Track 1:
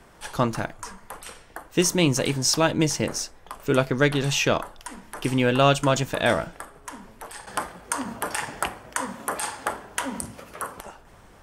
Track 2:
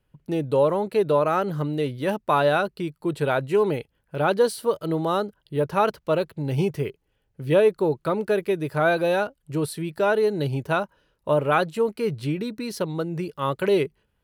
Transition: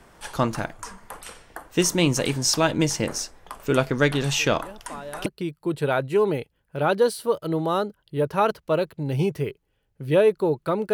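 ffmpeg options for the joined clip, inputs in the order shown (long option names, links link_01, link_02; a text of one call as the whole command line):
ffmpeg -i cue0.wav -i cue1.wav -filter_complex "[1:a]asplit=2[link_01][link_02];[0:a]apad=whole_dur=10.93,atrim=end=10.93,atrim=end=5.262[link_03];[link_02]atrim=start=2.648:end=8.32[link_04];[link_01]atrim=start=1.78:end=2.65,asetpts=PTS-STARTPTS,volume=-17.5dB,afade=type=in:duration=0.004:curve=hsin,afade=type=out:start_time=0.866:duration=0.004:curve=hsin,adelay=4390[link_05];[link_03][link_04]acrossfade=duration=0.004:curve1=hsin:curve2=hsin[link_06];[link_06][link_05]amix=inputs=2:normalize=0" out.wav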